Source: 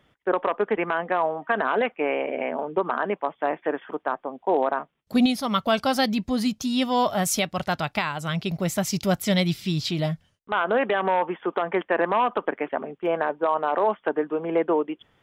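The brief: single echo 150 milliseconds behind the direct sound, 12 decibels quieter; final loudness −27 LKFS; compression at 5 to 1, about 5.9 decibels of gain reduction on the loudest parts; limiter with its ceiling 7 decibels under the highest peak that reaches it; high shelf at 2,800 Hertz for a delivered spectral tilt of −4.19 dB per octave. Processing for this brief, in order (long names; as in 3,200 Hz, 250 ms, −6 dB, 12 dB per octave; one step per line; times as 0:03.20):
high-shelf EQ 2,800 Hz +5.5 dB
downward compressor 5 to 1, threshold −22 dBFS
brickwall limiter −17.5 dBFS
single-tap delay 150 ms −12 dB
level +2 dB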